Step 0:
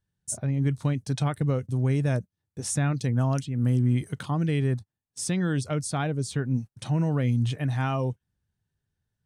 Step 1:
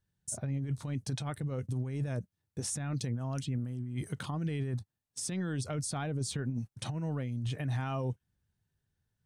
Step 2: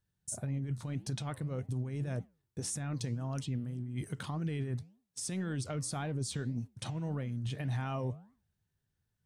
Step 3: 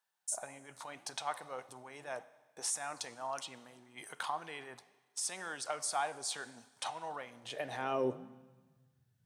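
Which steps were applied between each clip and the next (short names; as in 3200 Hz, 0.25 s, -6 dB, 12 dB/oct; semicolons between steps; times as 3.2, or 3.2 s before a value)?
negative-ratio compressor -27 dBFS, ratio -0.5; limiter -23 dBFS, peak gain reduction 8.5 dB; gain -3.5 dB
flange 1.8 Hz, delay 5.4 ms, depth 7.6 ms, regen -89%; gain +3 dB
Schroeder reverb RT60 1.4 s, combs from 31 ms, DRR 16 dB; high-pass sweep 830 Hz -> 120 Hz, 7.26–9.03; gain +2.5 dB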